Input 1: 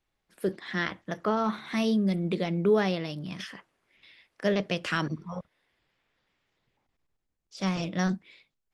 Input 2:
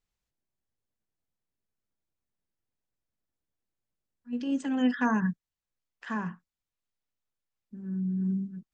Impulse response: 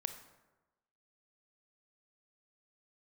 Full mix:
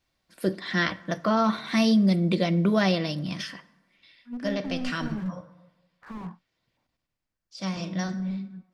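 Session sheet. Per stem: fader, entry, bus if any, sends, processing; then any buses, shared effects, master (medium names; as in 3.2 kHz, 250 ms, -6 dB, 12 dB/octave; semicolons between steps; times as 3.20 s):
+2.5 dB, 0.00 s, send -6 dB, peaking EQ 4.7 kHz +6.5 dB 0.56 oct; comb of notches 420 Hz; auto duck -17 dB, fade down 0.95 s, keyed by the second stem
-2.0 dB, 0.00 s, no send, LFO low-pass saw down 0.61 Hz 620–5500 Hz; slew-rate limiter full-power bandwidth 9.2 Hz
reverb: on, RT60 1.1 s, pre-delay 23 ms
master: none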